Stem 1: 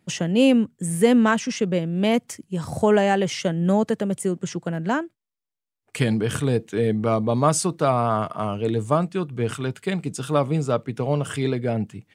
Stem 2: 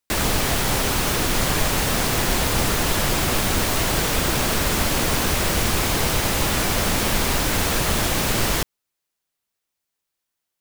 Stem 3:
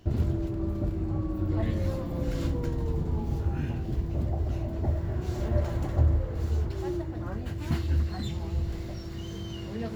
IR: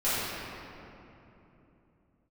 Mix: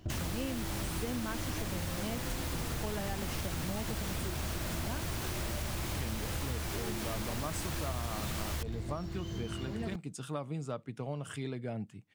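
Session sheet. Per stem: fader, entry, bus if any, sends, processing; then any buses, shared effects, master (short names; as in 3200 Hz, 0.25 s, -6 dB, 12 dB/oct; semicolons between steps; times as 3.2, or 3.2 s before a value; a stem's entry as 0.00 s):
-12.0 dB, 0.00 s, no send, dry
-11.5 dB, 0.00 s, no send, dry
-0.5 dB, 0.00 s, no send, limiter -24.5 dBFS, peak gain reduction 12 dB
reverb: off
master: bell 440 Hz -3.5 dB 0.55 oct; compressor 5:1, threshold -33 dBFS, peak gain reduction 10.5 dB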